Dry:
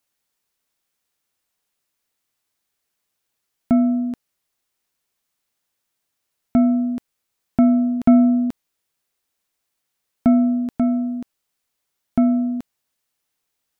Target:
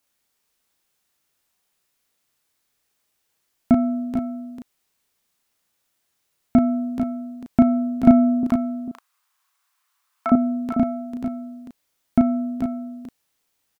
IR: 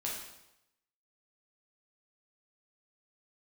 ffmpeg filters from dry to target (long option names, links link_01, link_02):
-filter_complex "[0:a]asettb=1/sr,asplit=3[link_01][link_02][link_03];[link_01]atrim=end=8.434[link_04];[link_02]atrim=start=8.43:end=10.32,asetpts=PTS-STARTPTS,afade=type=in:duration=0.004:curve=qsin,afade=type=out:start_time=1.886:duration=0.004:curve=qsin,highpass=frequency=1100:width_type=q:width=3.8[link_05];[link_03]atrim=start=10.316[link_06];[link_04][link_05]acrossfade=duration=0.004:curve1=hsin:curve2=qsin[link_07];[link_07][link_06]acrossfade=duration=0.004:curve1=qsin:curve2=hsin,asplit=2[link_08][link_09];[link_09]adelay=35,volume=-3.5dB[link_10];[link_08][link_10]amix=inputs=2:normalize=0,aecho=1:1:446:0.398,volume=2dB"